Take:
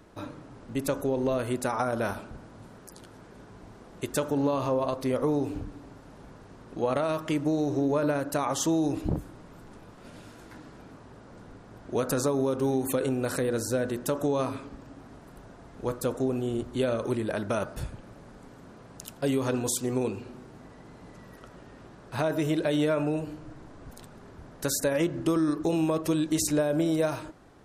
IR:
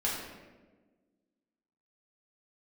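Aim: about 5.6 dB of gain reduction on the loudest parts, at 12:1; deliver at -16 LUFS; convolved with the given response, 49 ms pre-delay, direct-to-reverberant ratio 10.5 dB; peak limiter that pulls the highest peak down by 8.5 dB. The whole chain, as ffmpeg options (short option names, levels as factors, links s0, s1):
-filter_complex "[0:a]acompressor=threshold=0.0447:ratio=12,alimiter=level_in=1.26:limit=0.0631:level=0:latency=1,volume=0.794,asplit=2[s0][s1];[1:a]atrim=start_sample=2205,adelay=49[s2];[s1][s2]afir=irnorm=-1:irlink=0,volume=0.133[s3];[s0][s3]amix=inputs=2:normalize=0,volume=9.44"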